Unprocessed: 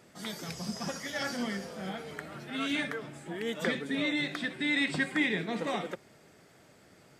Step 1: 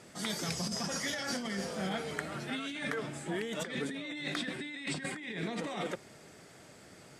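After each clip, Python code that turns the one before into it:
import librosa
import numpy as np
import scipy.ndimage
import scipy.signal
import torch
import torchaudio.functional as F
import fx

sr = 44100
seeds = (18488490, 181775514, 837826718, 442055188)

y = scipy.signal.sosfilt(scipy.signal.butter(4, 11000.0, 'lowpass', fs=sr, output='sos'), x)
y = fx.high_shelf(y, sr, hz=5900.0, db=6.0)
y = fx.over_compress(y, sr, threshold_db=-37.0, ratio=-1.0)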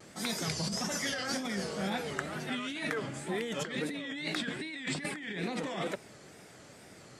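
y = fx.wow_flutter(x, sr, seeds[0], rate_hz=2.1, depth_cents=140.0)
y = y * 10.0 ** (1.5 / 20.0)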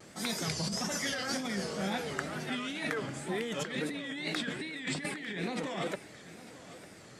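y = fx.echo_feedback(x, sr, ms=900, feedback_pct=39, wet_db=-17.0)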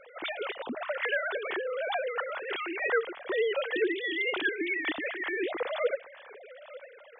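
y = fx.sine_speech(x, sr)
y = y * 10.0 ** (4.0 / 20.0)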